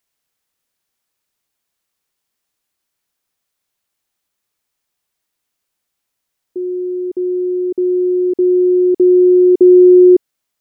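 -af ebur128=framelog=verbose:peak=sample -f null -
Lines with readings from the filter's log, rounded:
Integrated loudness:
  I:         -11.2 LUFS
  Threshold: -21.7 LUFS
Loudness range:
  LRA:        18.8 LU
  Threshold: -35.4 LUFS
  LRA low:   -29.4 LUFS
  LRA high:  -10.6 LUFS
Sample peak:
  Peak:       -2.3 dBFS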